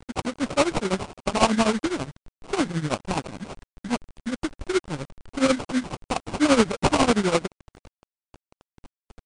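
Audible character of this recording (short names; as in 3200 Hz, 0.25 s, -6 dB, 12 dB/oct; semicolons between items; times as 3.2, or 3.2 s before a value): aliases and images of a low sample rate 1800 Hz, jitter 20%; tremolo triangle 12 Hz, depth 90%; a quantiser's noise floor 8-bit, dither none; MP3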